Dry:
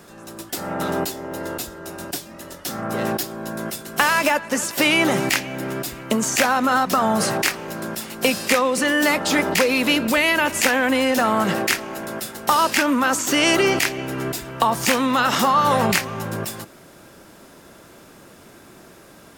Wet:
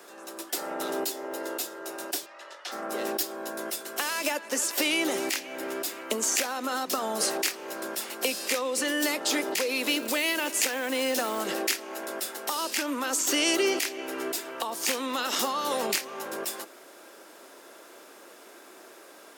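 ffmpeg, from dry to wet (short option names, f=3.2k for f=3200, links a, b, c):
-filter_complex "[0:a]asplit=3[a][b][c];[a]afade=t=out:st=2.25:d=0.02[d];[b]highpass=750,lowpass=4.2k,afade=t=in:st=2.25:d=0.02,afade=t=out:st=2.71:d=0.02[e];[c]afade=t=in:st=2.71:d=0.02[f];[d][e][f]amix=inputs=3:normalize=0,asettb=1/sr,asplit=3[g][h][i];[g]atrim=end=9.844[j];[h]atrim=start=9.84:end=11.42,asetpts=PTS-STARTPTS,afade=t=in:d=0.004:c=qsin,afade=t=out:st=1.576:d=0.004:c=qsin,acrusher=bits=5:mode=log:mix=0:aa=0.000001[k];[i]atrim=start=11.416[l];[j][k]acrossfade=d=0.004:c1=hsin:c2=qsin[m];[m][l]acrossfade=d=0.004:c1=qsin:c2=hsin,highpass=f=330:w=0.5412,highpass=f=330:w=1.3066,alimiter=limit=-8dB:level=0:latency=1:release=409,acrossover=split=430|3000[n][o][p];[o]acompressor=threshold=-35dB:ratio=2.5[q];[n][q][p]amix=inputs=3:normalize=0,volume=-2dB"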